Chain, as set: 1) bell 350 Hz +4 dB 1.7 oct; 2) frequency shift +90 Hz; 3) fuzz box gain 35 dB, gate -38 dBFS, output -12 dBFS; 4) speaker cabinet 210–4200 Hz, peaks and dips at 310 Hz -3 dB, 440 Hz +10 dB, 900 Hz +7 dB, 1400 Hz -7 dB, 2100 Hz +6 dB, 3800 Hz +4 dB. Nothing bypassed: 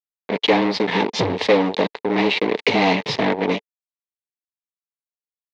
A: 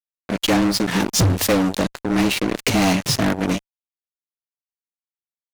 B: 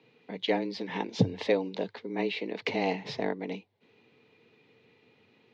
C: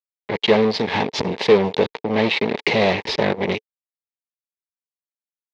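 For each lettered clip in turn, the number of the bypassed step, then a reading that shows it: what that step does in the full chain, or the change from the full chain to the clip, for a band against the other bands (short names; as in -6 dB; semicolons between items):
4, momentary loudness spread change +1 LU; 3, crest factor change +4.0 dB; 2, 500 Hz band +2.0 dB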